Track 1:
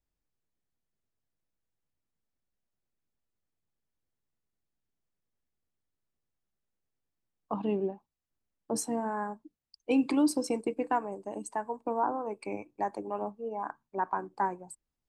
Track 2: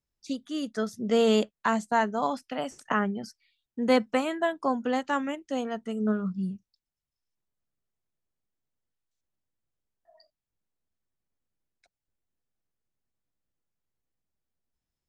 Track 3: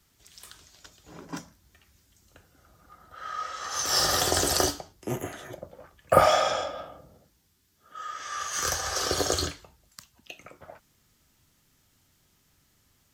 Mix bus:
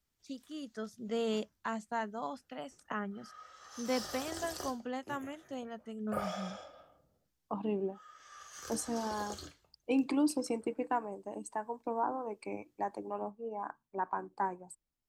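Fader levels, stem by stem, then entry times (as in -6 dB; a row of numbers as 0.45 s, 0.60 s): -4.0 dB, -11.5 dB, -19.0 dB; 0.00 s, 0.00 s, 0.00 s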